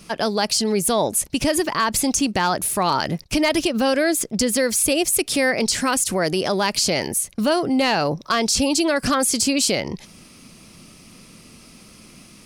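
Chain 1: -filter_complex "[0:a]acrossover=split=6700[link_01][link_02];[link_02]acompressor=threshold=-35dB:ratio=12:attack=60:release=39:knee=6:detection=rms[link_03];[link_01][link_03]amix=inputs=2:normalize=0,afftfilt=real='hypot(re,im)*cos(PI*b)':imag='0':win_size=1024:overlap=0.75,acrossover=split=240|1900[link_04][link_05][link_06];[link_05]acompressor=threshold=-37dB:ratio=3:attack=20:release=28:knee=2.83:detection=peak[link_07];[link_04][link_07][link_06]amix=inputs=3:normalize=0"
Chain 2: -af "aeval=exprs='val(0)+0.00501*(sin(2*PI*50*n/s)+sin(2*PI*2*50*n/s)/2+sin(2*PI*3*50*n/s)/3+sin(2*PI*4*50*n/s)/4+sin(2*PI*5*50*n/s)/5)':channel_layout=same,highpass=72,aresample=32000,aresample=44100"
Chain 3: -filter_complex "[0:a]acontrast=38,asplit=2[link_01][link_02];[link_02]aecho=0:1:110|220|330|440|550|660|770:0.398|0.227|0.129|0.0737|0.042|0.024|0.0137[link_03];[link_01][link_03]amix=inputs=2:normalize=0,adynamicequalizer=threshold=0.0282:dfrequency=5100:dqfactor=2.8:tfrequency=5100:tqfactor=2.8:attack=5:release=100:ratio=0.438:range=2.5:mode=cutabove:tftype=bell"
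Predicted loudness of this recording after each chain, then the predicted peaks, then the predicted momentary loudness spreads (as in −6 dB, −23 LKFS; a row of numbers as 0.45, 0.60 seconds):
−27.5, −20.0, −14.5 LKFS; −6.0, −7.0, −1.5 dBFS; 4, 3, 3 LU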